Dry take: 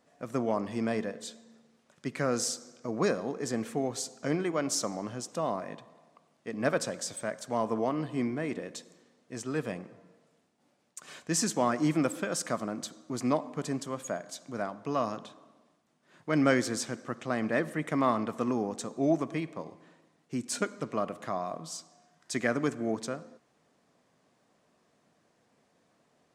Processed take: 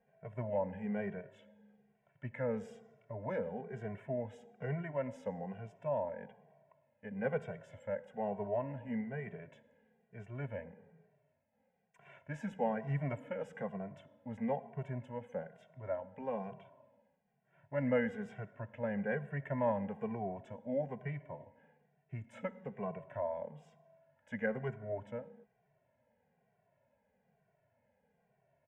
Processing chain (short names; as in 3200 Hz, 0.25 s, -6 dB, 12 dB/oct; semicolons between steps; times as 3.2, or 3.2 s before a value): air absorption 480 m; fixed phaser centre 1300 Hz, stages 6; speed mistake 48 kHz file played as 44.1 kHz; endless flanger 2.1 ms -1.1 Hz; gain +1.5 dB